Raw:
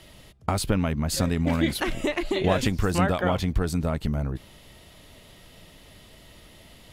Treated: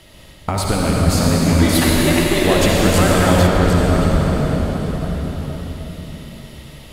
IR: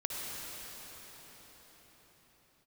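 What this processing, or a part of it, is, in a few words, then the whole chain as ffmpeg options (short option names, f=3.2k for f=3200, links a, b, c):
cathedral: -filter_complex "[1:a]atrim=start_sample=2205[a];[0:a][a]afir=irnorm=-1:irlink=0,asettb=1/sr,asplit=3[b][c][d];[b]atrim=end=1.694[e];[c]atrim=start=1.69:end=3.47,asetpts=PTS-STARTPTS,afade=t=in:d=0.004:c=qsin,afade=t=out:st=1.776:d=0.004:c=qsin,aemphasis=mode=production:type=cd[f];[d]atrim=start=3.466[g];[e][f]acrossfade=d=0.004:c1=hsin:c2=qsin[h];[h][g]acrossfade=d=0.004:c1=qsin:c2=hsin,volume=5.5dB"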